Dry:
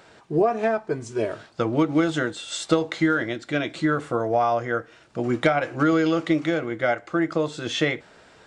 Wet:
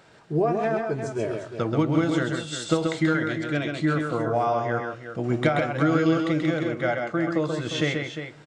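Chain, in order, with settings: bell 140 Hz +6.5 dB 0.76 oct; tapped delay 0.132/0.353 s -4.5/-9.5 dB; on a send at -20 dB: reverb RT60 1.2 s, pre-delay 3 ms; on the sum: gain -3.5 dB

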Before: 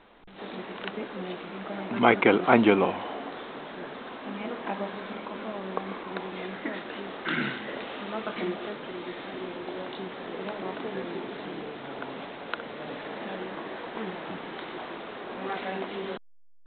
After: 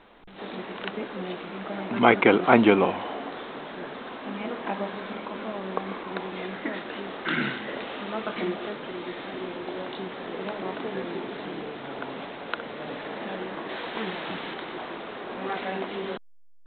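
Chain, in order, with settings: 13.69–14.54 high shelf 2500 Hz +10.5 dB; gain +2 dB

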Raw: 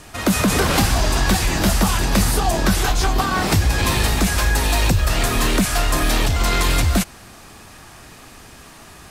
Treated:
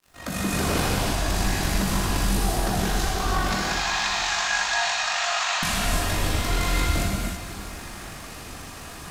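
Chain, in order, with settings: opening faded in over 0.87 s; 3.49–5.63 Chebyshev band-pass 720–7000 Hz, order 4; compressor, threshold -24 dBFS, peak gain reduction 12 dB; crackle 280/s -43 dBFS; AM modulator 49 Hz, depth 75%; diffused feedback echo 0.452 s, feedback 46%, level -13 dB; non-linear reverb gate 0.36 s flat, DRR -5.5 dB

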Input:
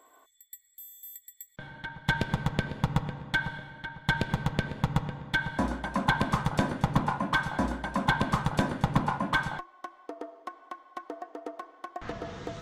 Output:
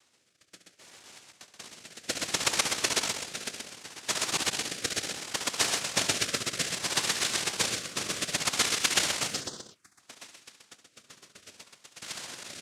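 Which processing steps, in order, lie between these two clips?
cycle switcher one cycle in 3, muted; FFT band-reject 240–2100 Hz; hard clip -24.5 dBFS, distortion -9 dB; noise vocoder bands 1; 9.28–9.99 envelope phaser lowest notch 360 Hz, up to 2400 Hz, full sweep at -37 dBFS; loudspeakers at several distances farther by 24 m -11 dB, 44 m -5 dB; rotary speaker horn 0.65 Hz; gain +7.5 dB

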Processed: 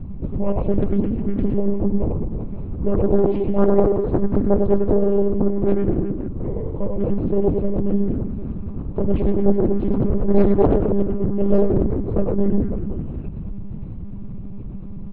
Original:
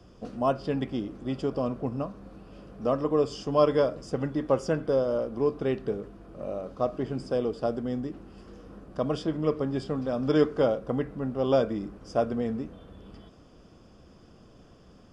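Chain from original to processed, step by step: tilt -4 dB/oct; notch 2600 Hz, Q 17; formant-preserving pitch shift -3 st; reverse bouncing-ball echo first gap 0.1 s, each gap 1.2×, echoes 5; formant shift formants -3 st; hum 50 Hz, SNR 12 dB; doubler 15 ms -10 dB; monotone LPC vocoder at 8 kHz 200 Hz; Doppler distortion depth 0.74 ms; gain +3 dB

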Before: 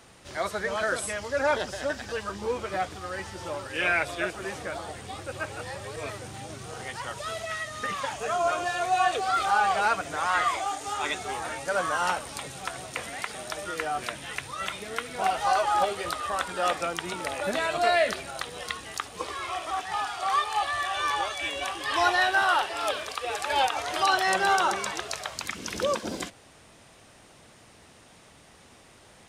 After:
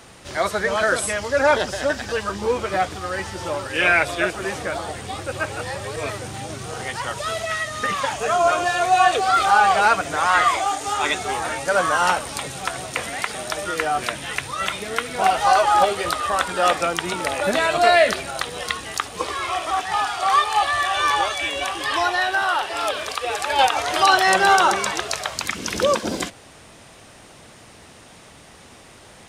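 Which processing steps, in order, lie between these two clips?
21.35–23.59 compressor 2:1, threshold -30 dBFS, peak gain reduction 7 dB; gain +8 dB

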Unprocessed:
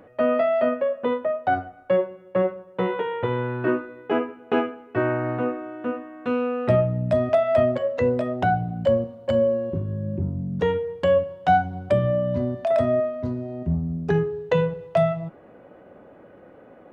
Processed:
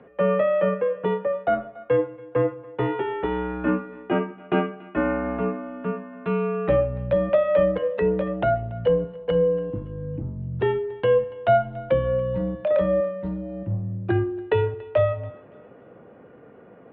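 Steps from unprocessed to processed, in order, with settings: thinning echo 0.284 s, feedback 41%, high-pass 510 Hz, level -21 dB; mistuned SSB -59 Hz 150–3500 Hz

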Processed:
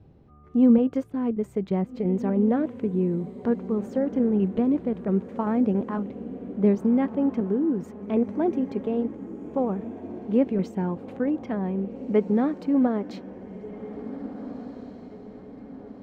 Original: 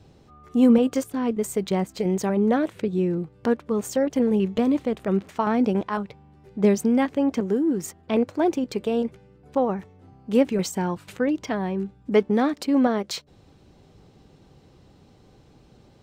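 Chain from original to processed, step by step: EQ curve 210 Hz 0 dB, 2200 Hz -10 dB, 8100 Hz -26 dB; on a send: diffused feedback echo 1.702 s, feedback 49%, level -13 dB

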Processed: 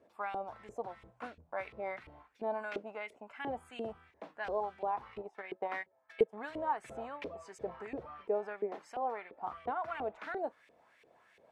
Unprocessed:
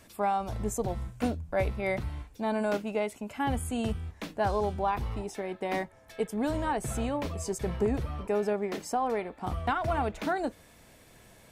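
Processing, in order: 5.06–6.52 transient shaper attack +5 dB, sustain -10 dB; LFO band-pass saw up 2.9 Hz 410–2600 Hz

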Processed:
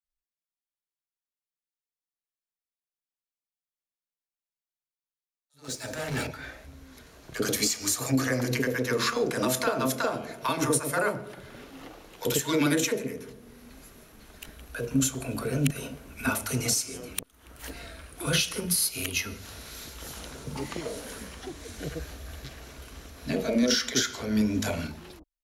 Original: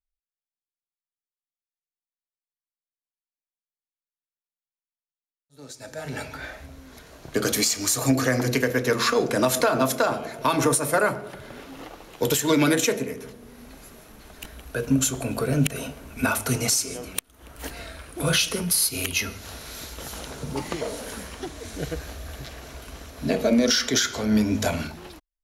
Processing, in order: 5.64–6.27 sample leveller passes 3; bands offset in time highs, lows 40 ms, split 740 Hz; gain -4 dB

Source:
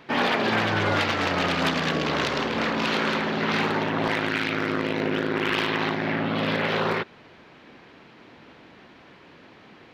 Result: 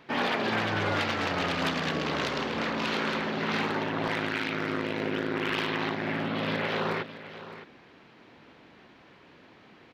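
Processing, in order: echo 0.613 s -14 dB; gain -5 dB

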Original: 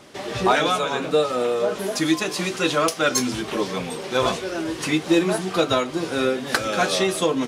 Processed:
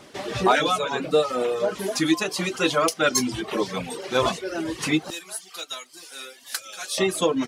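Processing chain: reverb removal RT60 0.82 s; 5.1–6.98 differentiator; crackle 25/s -49 dBFS

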